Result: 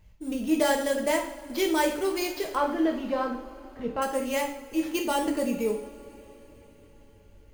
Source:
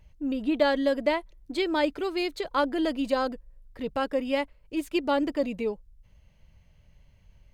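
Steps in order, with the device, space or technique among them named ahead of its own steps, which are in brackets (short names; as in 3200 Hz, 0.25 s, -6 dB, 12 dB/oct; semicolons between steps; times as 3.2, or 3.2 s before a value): early companding sampler (sample-rate reducer 9200 Hz, jitter 0%; companded quantiser 8-bit); 2.55–4.02 air absorption 300 m; two-slope reverb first 0.53 s, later 4.9 s, from -22 dB, DRR 0.5 dB; gain -1.5 dB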